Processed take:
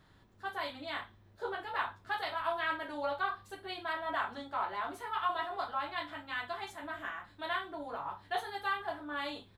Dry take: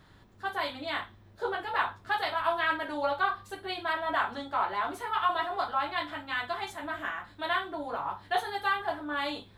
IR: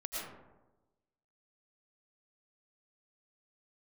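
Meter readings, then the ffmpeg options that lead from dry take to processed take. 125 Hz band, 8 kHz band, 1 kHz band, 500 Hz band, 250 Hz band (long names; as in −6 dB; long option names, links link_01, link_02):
−5.5 dB, can't be measured, −6.0 dB, −5.5 dB, −6.0 dB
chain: -filter_complex "[0:a]asplit=2[link_01][link_02];[link_02]adelay=28,volume=-14dB[link_03];[link_01][link_03]amix=inputs=2:normalize=0,volume=-6dB"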